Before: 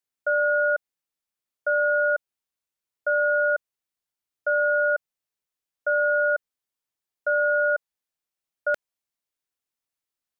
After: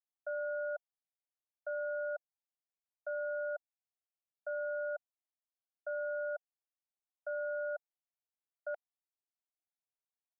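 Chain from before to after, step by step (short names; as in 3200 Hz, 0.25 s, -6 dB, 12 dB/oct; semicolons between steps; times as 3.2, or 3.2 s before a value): ladder band-pass 780 Hz, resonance 65%; gain -5.5 dB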